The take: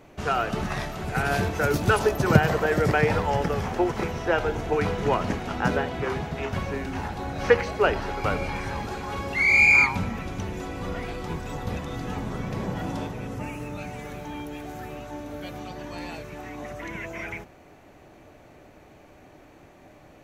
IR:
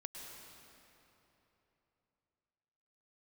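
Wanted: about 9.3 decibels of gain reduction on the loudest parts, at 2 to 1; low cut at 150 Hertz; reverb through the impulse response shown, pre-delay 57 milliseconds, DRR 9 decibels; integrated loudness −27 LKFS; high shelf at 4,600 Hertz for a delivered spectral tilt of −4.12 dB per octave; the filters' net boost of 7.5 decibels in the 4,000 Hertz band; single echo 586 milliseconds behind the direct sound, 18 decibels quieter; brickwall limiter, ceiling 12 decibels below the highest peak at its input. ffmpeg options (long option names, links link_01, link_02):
-filter_complex "[0:a]highpass=150,equalizer=frequency=4000:width_type=o:gain=8,highshelf=frequency=4600:gain=4,acompressor=threshold=-28dB:ratio=2,alimiter=limit=-24dB:level=0:latency=1,aecho=1:1:586:0.126,asplit=2[link_01][link_02];[1:a]atrim=start_sample=2205,adelay=57[link_03];[link_02][link_03]afir=irnorm=-1:irlink=0,volume=-6dB[link_04];[link_01][link_04]amix=inputs=2:normalize=0,volume=6dB"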